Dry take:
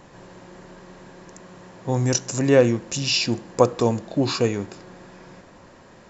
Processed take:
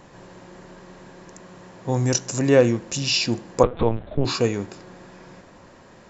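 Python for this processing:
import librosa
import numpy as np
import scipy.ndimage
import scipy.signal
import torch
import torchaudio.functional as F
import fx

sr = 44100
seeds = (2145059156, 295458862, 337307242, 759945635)

y = fx.lpc_vocoder(x, sr, seeds[0], excitation='pitch_kept', order=8, at=(3.63, 4.25))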